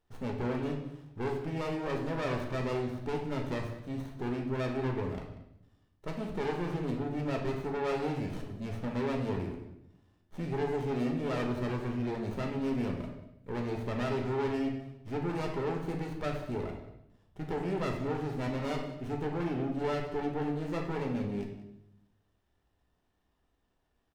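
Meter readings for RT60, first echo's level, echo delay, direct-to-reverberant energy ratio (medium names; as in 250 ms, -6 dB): 0.80 s, -17.5 dB, 189 ms, 1.0 dB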